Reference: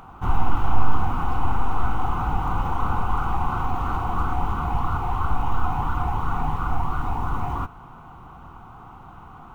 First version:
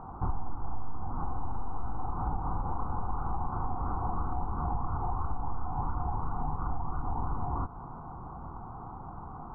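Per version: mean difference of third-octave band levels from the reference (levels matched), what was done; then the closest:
9.0 dB: low-pass filter 1,100 Hz 24 dB per octave
downward compressor 6 to 1, threshold −29 dBFS, peak gain reduction 19 dB
level +1.5 dB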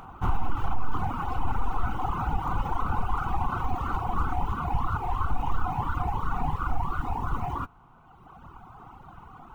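2.0 dB: reverb reduction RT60 2 s
brickwall limiter −15.5 dBFS, peak gain reduction 9 dB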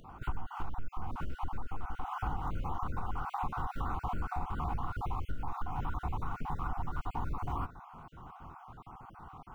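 4.5 dB: time-frequency cells dropped at random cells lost 34%
downward compressor 12 to 1, threshold −24 dBFS, peak gain reduction 15 dB
level −5.5 dB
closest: second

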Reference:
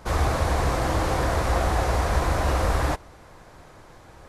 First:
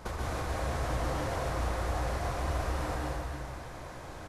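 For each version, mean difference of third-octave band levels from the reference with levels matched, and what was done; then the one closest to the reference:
5.5 dB: downward compressor 12 to 1, threshold −33 dBFS, peak gain reduction 16.5 dB
on a send: single-tap delay 302 ms −8 dB
on the sum: dense smooth reverb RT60 1.7 s, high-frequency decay 0.9×, pre-delay 115 ms, DRR −3.5 dB
level −1.5 dB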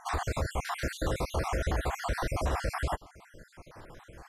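8.0 dB: time-frequency cells dropped at random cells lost 54%
in parallel at −2.5 dB: downward compressor, threshold −33 dBFS, peak gain reduction 13.5 dB
on the sum: brickwall limiter −15.5 dBFS, peak gain reduction 5.5 dB
level −5 dB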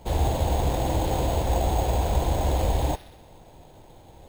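4.0 dB: elliptic band-stop filter 910–3,300 Hz
delay with a high-pass on its return 63 ms, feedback 63%, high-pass 2,400 Hz, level −11 dB
bad sample-rate conversion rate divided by 6×, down none, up hold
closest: third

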